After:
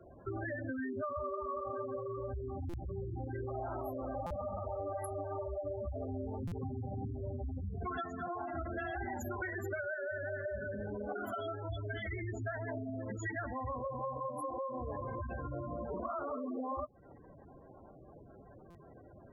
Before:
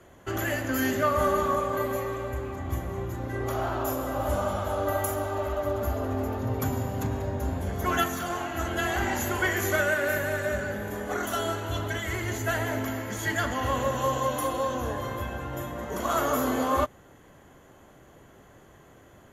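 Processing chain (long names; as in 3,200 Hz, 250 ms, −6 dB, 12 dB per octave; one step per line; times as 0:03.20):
gate on every frequency bin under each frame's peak −10 dB strong
parametric band 740 Hz +2.5 dB
downward compressor, threshold −35 dBFS, peak gain reduction 14 dB
buffer that repeats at 0:02.69/0:04.26/0:06.47/0:18.70, samples 256, times 7
level −1.5 dB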